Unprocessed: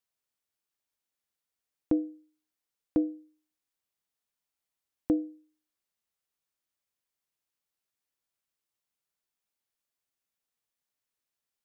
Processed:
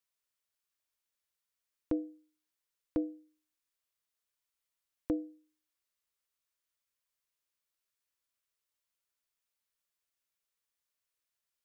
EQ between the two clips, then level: peaking EQ 210 Hz -9 dB 1.8 oct; band-stop 780 Hz, Q 5; 0.0 dB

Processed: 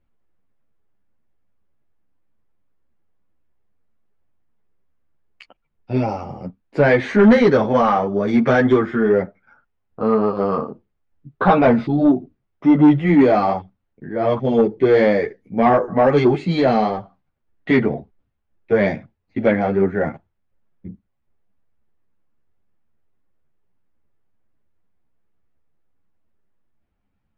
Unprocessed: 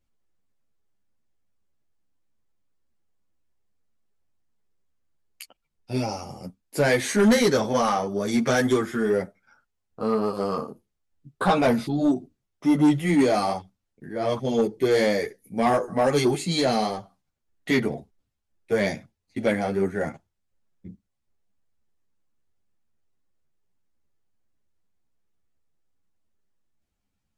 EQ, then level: low-pass 2.3 kHz 12 dB/octave; distance through air 67 m; +7.0 dB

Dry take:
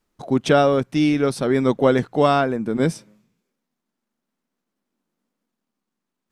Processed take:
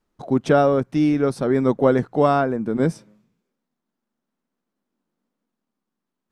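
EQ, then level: peaking EQ 2.3 kHz -2.5 dB; treble shelf 4.2 kHz -8 dB; dynamic bell 3.3 kHz, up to -6 dB, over -44 dBFS, Q 1.5; 0.0 dB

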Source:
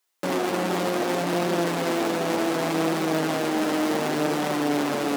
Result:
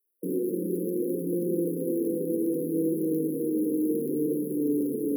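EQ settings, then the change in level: high-pass 200 Hz 12 dB/octave; brick-wall FIR band-stop 520–10000 Hz; 0.0 dB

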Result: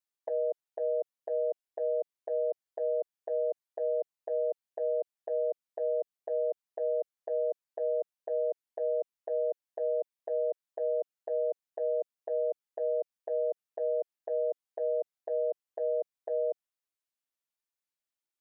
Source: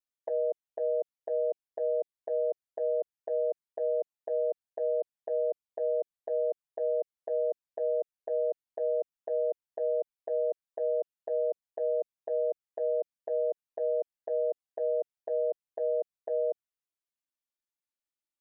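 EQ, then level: bass shelf 190 Hz -9 dB; 0.0 dB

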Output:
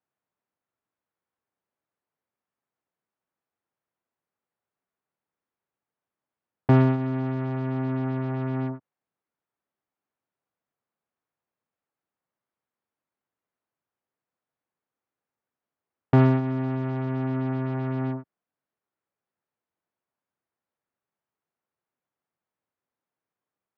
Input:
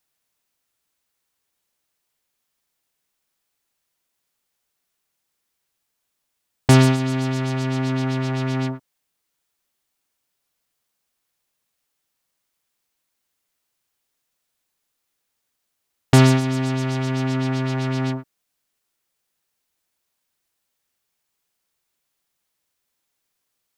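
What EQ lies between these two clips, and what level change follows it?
high-pass 94 Hz; low-pass 1.4 kHz 12 dB/octave; distance through air 53 m; -4.0 dB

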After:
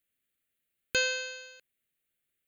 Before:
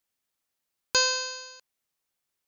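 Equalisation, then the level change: static phaser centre 2.3 kHz, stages 4; +2.0 dB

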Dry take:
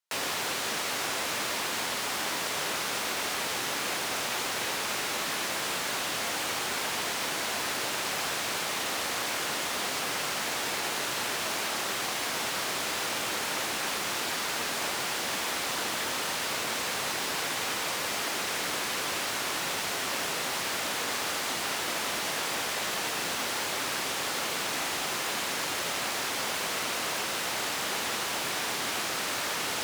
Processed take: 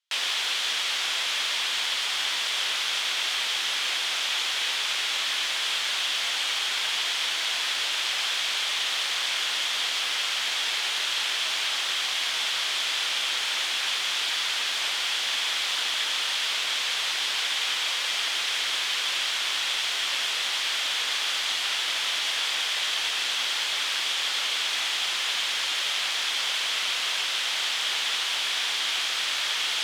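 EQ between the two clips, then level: band-pass filter 3.3 kHz, Q 0.88; peaking EQ 3.3 kHz +6.5 dB 0.29 oct; +6.0 dB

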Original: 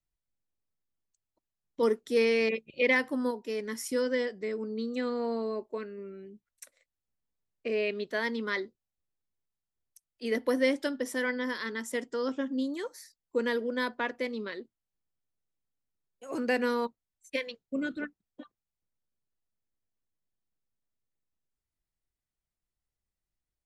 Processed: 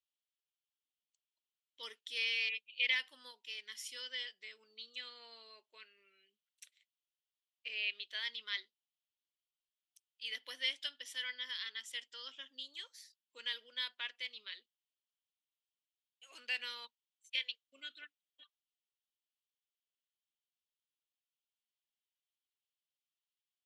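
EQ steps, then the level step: band-pass filter 3.1 kHz, Q 4.3; tilt EQ +3.5 dB/octave; +1.0 dB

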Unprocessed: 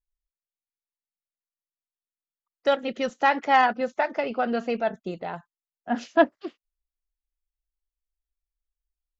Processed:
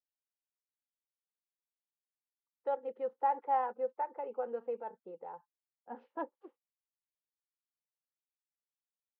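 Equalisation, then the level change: two resonant band-passes 660 Hz, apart 0.75 oct; distance through air 250 m; -5.0 dB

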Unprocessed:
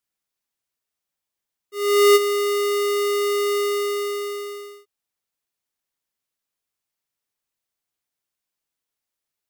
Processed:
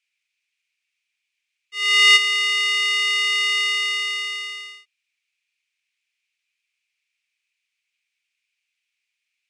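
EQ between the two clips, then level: resonant high-pass 2.4 kHz, resonance Q 6.5; Bessel low-pass 6.5 kHz, order 4; +5.0 dB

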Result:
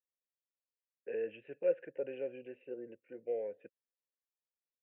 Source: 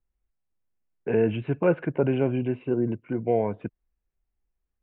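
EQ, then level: vowel filter e; bass shelf 230 Hz -7 dB; peaking EQ 650 Hz -7 dB 0.32 oct; -3.0 dB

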